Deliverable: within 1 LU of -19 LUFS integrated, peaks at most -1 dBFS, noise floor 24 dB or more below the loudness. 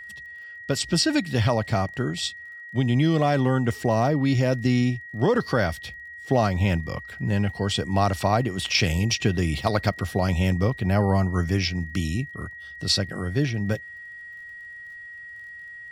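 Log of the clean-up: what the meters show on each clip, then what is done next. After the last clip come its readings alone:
tick rate 36 per s; steady tone 1.9 kHz; tone level -38 dBFS; loudness -24.0 LUFS; peak level -6.0 dBFS; loudness target -19.0 LUFS
-> de-click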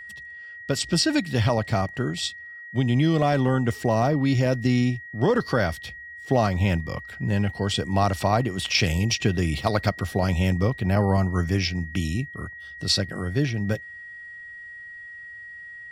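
tick rate 0.063 per s; steady tone 1.9 kHz; tone level -38 dBFS
-> band-stop 1.9 kHz, Q 30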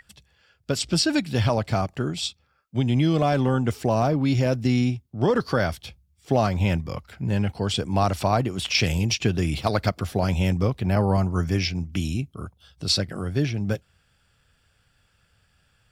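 steady tone not found; loudness -24.0 LUFS; peak level -6.5 dBFS; loudness target -19.0 LUFS
-> trim +5 dB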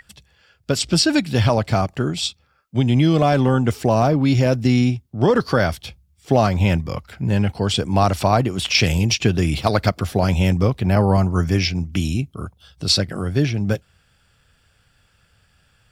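loudness -19.0 LUFS; peak level -1.5 dBFS; noise floor -61 dBFS

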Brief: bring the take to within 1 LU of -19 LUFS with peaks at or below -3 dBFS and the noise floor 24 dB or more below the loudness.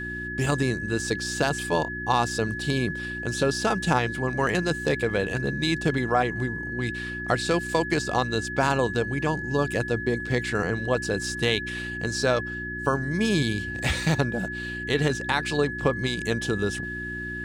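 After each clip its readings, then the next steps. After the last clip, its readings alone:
hum 60 Hz; highest harmonic 360 Hz; hum level -34 dBFS; steady tone 1.7 kHz; tone level -32 dBFS; loudness -26.0 LUFS; peak level -8.5 dBFS; loudness target -19.0 LUFS
-> de-hum 60 Hz, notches 6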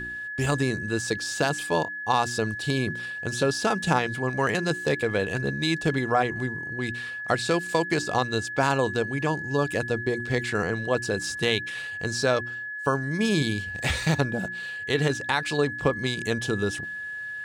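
hum not found; steady tone 1.7 kHz; tone level -32 dBFS
-> band-stop 1.7 kHz, Q 30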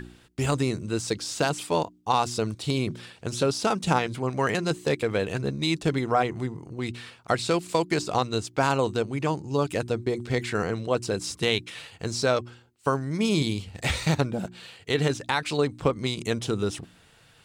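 steady tone not found; loudness -27.0 LUFS; peak level -9.0 dBFS; loudness target -19.0 LUFS
-> trim +8 dB; peak limiter -3 dBFS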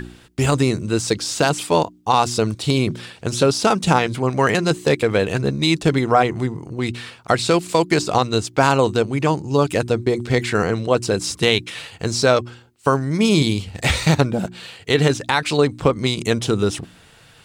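loudness -19.5 LUFS; peak level -3.0 dBFS; noise floor -49 dBFS

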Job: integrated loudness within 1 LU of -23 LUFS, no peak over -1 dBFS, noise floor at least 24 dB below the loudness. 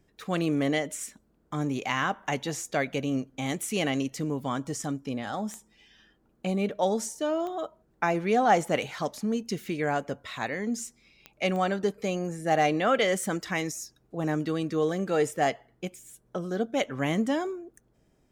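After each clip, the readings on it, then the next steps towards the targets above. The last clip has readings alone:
clicks found 4; loudness -29.0 LUFS; peak level -10.5 dBFS; loudness target -23.0 LUFS
-> de-click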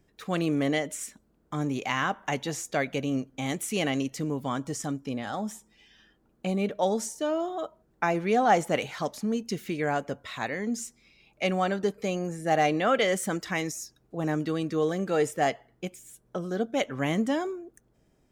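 clicks found 0; loudness -29.0 LUFS; peak level -10.5 dBFS; loudness target -23.0 LUFS
-> trim +6 dB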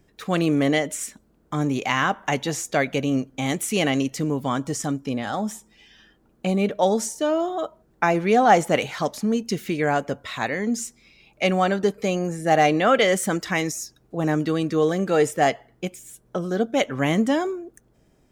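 loudness -23.0 LUFS; peak level -4.5 dBFS; noise floor -61 dBFS

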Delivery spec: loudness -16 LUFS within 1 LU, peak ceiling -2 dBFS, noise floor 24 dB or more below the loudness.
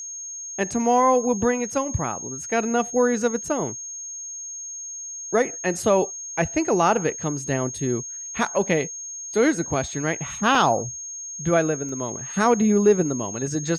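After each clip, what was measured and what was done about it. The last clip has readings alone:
dropouts 2; longest dropout 2.2 ms; steady tone 6.5 kHz; tone level -32 dBFS; loudness -23.5 LUFS; peak level -7.0 dBFS; loudness target -16.0 LUFS
-> interpolate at 10.55/11.89 s, 2.2 ms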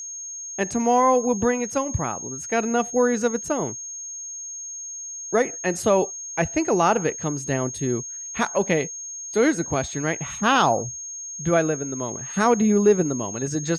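dropouts 0; steady tone 6.5 kHz; tone level -32 dBFS
-> band-stop 6.5 kHz, Q 30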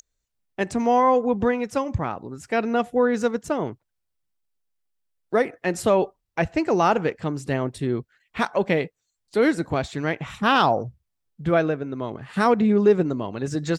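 steady tone not found; loudness -23.0 LUFS; peak level -7.5 dBFS; loudness target -16.0 LUFS
-> trim +7 dB; peak limiter -2 dBFS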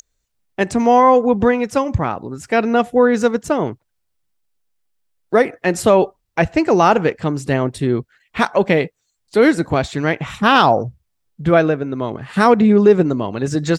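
loudness -16.5 LUFS; peak level -2.0 dBFS; noise floor -71 dBFS

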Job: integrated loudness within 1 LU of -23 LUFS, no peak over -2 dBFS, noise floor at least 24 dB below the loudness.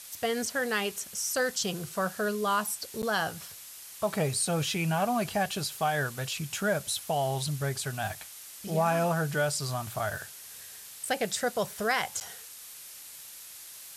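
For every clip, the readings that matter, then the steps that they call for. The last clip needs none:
dropouts 2; longest dropout 9.5 ms; noise floor -47 dBFS; noise floor target -54 dBFS; loudness -30.0 LUFS; peak level -14.0 dBFS; loudness target -23.0 LUFS
-> interpolate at 3.02/12.20 s, 9.5 ms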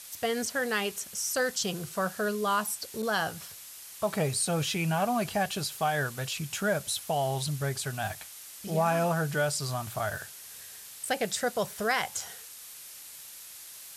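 dropouts 0; noise floor -47 dBFS; noise floor target -54 dBFS
-> noise reduction 7 dB, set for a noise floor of -47 dBFS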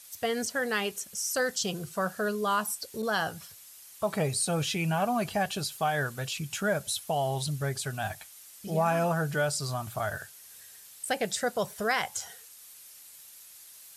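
noise floor -51 dBFS; noise floor target -54 dBFS
-> noise reduction 6 dB, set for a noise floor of -51 dBFS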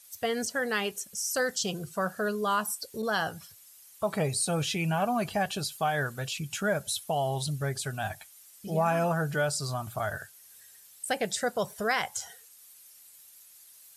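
noise floor -55 dBFS; loudness -30.5 LUFS; peak level -14.5 dBFS; loudness target -23.0 LUFS
-> trim +7.5 dB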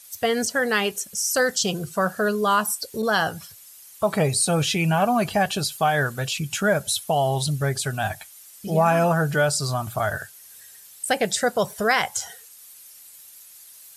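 loudness -23.0 LUFS; peak level -7.0 dBFS; noise floor -47 dBFS

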